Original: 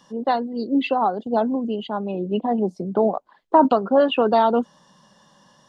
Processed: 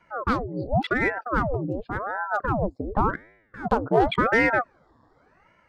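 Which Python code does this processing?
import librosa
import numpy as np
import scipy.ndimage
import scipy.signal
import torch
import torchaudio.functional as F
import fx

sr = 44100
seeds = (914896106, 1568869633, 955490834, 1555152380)

y = fx.wiener(x, sr, points=15)
y = fx.comb_fb(y, sr, f0_hz=54.0, decay_s=0.92, harmonics='odd', damping=0.0, mix_pct=100, at=(3.15, 3.65), fade=0.02)
y = fx.ring_lfo(y, sr, carrier_hz=630.0, swing_pct=90, hz=0.9)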